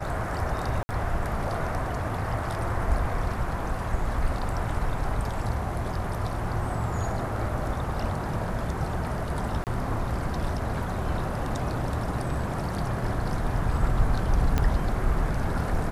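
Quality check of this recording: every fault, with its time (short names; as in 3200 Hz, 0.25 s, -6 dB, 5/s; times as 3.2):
0.83–0.89 gap 60 ms
9.64–9.67 gap 28 ms
14.58 pop -11 dBFS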